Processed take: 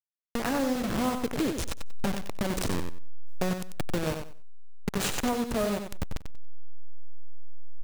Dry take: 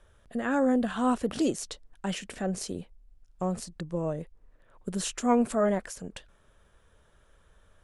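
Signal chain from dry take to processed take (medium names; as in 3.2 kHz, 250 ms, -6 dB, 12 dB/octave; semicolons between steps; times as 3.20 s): send-on-delta sampling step -26 dBFS; compression, threshold -34 dBFS, peak gain reduction 14.5 dB; on a send: feedback delay 93 ms, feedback 21%, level -7 dB; on the sum: trim +8 dB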